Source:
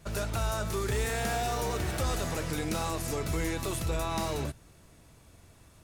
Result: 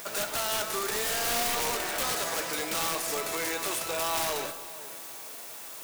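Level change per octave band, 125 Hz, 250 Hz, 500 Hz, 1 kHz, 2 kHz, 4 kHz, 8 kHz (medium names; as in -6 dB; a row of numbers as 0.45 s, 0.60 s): -16.5 dB, -5.5 dB, 0.0 dB, +2.5 dB, +4.5 dB, +7.5 dB, +7.5 dB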